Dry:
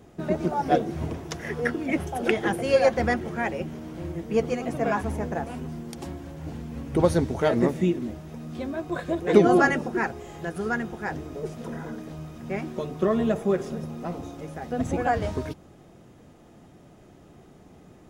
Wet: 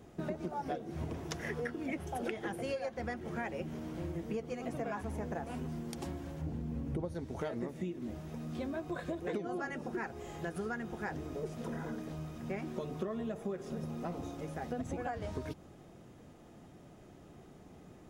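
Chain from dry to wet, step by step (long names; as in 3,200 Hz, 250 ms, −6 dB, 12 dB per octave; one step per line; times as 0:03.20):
0:06.41–0:07.15: tilt shelving filter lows +5.5 dB, about 730 Hz
downward compressor 16 to 1, threshold −30 dBFS, peak gain reduction 20.5 dB
level −4 dB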